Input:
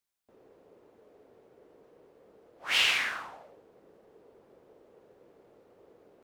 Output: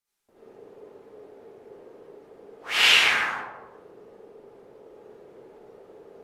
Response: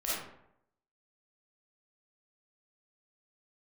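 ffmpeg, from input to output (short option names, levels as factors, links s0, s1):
-filter_complex "[0:a]asettb=1/sr,asplit=3[s0][s1][s2];[s0]atrim=end=3.324[s3];[s1]atrim=start=3.32:end=4.84,asetpts=PTS-STARTPTS,afade=t=in:d=0.004:c=qsin,afade=t=out:st=1.516:d=0.004:c=qsin,acompressor=threshold=0.00178:ratio=6[s4];[s2]atrim=start=4.836[s5];[s3][s4]acrossfade=d=0.004:c1=hsin:c2=qsin[s6];[s6][s5]acrossfade=d=0.004:c1=qsin:c2=hsin[s7];[1:a]atrim=start_sample=2205,asetrate=28665,aresample=44100[s8];[s7][s8]afir=irnorm=-1:irlink=0"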